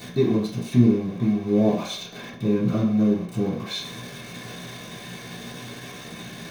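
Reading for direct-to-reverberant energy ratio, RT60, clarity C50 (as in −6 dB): −9.0 dB, 0.60 s, 5.5 dB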